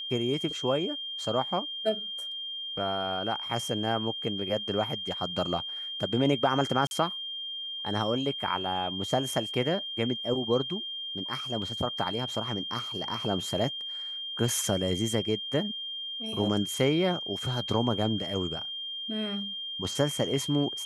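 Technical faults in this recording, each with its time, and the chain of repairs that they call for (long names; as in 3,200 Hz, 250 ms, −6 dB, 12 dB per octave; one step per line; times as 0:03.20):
whistle 3,200 Hz −34 dBFS
0:06.87–0:06.91: drop-out 41 ms
0:11.62: drop-out 2.2 ms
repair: notch filter 3,200 Hz, Q 30
repair the gap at 0:06.87, 41 ms
repair the gap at 0:11.62, 2.2 ms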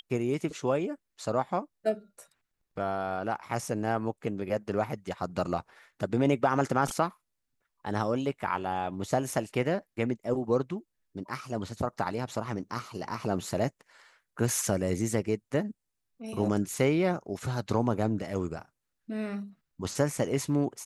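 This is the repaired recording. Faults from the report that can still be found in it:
none of them is left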